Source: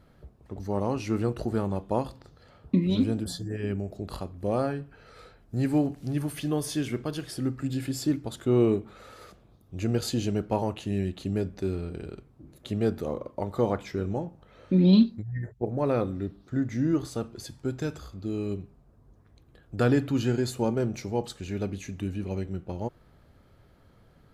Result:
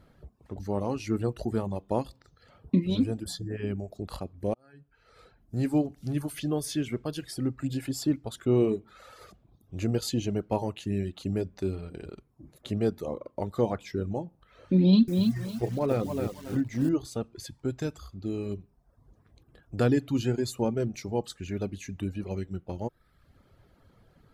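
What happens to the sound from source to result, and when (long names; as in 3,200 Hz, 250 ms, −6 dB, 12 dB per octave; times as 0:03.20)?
0:04.54–0:05.74: fade in
0:14.80–0:16.89: feedback echo at a low word length 279 ms, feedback 35%, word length 7 bits, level −4.5 dB
whole clip: reverb reduction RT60 0.72 s; dynamic equaliser 1,400 Hz, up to −4 dB, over −44 dBFS, Q 1.2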